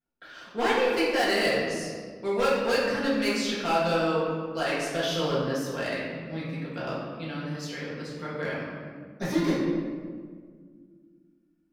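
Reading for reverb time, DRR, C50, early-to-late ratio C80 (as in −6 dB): 1.8 s, −8.0 dB, −1.0 dB, 2.0 dB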